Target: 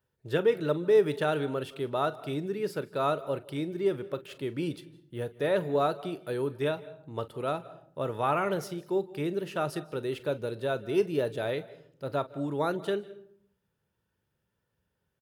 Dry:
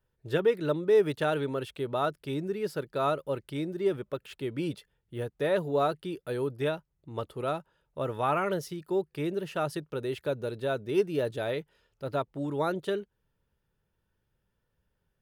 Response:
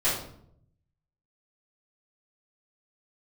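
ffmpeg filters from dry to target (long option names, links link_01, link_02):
-filter_complex "[0:a]highpass=83,aecho=1:1:35|46:0.126|0.126,asplit=2[link_01][link_02];[1:a]atrim=start_sample=2205,asetrate=52920,aresample=44100,adelay=149[link_03];[link_02][link_03]afir=irnorm=-1:irlink=0,volume=-29dB[link_04];[link_01][link_04]amix=inputs=2:normalize=0"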